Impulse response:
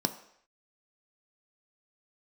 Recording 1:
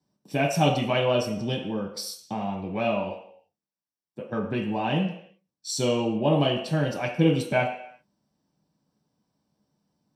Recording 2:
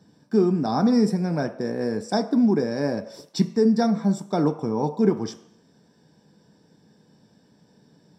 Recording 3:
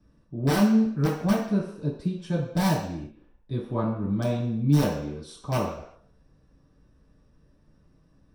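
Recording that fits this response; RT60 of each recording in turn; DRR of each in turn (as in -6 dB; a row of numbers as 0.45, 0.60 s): 2; not exponential, not exponential, not exponential; -2.0, 7.5, -9.5 dB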